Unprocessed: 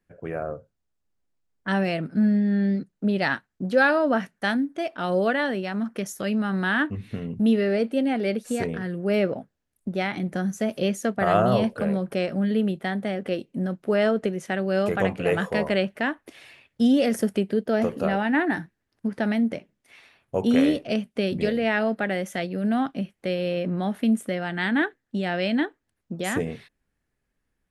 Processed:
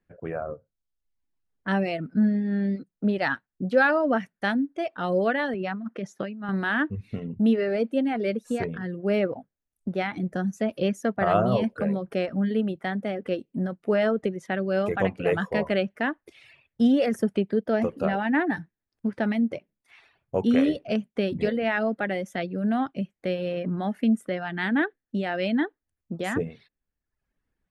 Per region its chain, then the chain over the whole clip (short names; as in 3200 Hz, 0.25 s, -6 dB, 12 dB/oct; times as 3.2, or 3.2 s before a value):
5.54–6.49 high shelf 3900 Hz -7 dB + negative-ratio compressor -30 dBFS + BPF 120–6000 Hz
whole clip: reverb removal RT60 0.75 s; high shelf 4900 Hz -11.5 dB